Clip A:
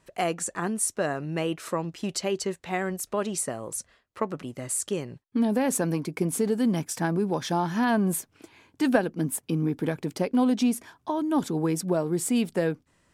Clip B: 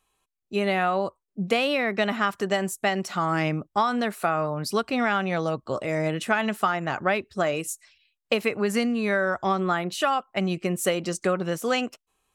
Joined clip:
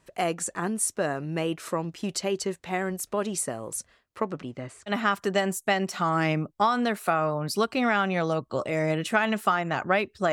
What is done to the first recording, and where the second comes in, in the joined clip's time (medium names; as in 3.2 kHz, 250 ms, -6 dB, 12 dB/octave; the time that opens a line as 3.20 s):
clip A
4.24–4.92 s: low-pass 10 kHz -> 1.7 kHz
4.89 s: go over to clip B from 2.05 s, crossfade 0.06 s